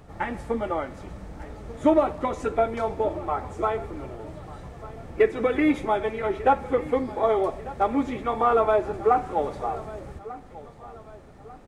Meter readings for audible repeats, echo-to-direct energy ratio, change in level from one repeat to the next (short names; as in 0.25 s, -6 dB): 3, -17.5 dB, -8.0 dB